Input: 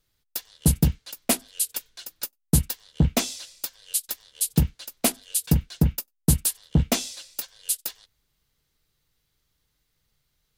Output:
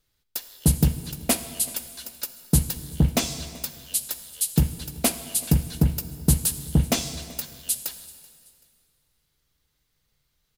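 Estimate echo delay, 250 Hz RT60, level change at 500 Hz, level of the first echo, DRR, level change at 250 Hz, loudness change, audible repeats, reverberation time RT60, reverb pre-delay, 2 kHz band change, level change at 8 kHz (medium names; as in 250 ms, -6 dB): 382 ms, 2.1 s, +0.5 dB, -22.5 dB, 9.5 dB, +0.5 dB, +0.5 dB, 2, 2.1 s, 6 ms, +0.5 dB, +0.5 dB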